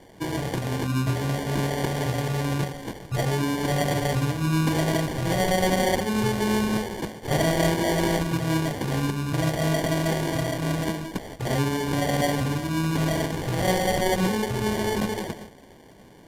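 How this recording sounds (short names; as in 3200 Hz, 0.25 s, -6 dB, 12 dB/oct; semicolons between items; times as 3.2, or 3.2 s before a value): aliases and images of a low sample rate 1300 Hz, jitter 0%; AAC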